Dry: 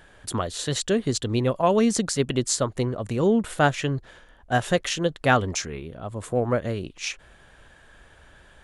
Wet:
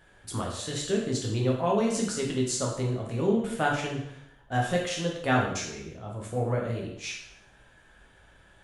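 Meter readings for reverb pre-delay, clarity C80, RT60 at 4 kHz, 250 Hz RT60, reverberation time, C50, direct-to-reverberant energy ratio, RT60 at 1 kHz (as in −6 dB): 5 ms, 7.5 dB, 0.65 s, 0.75 s, 0.70 s, 4.0 dB, −2.5 dB, 0.75 s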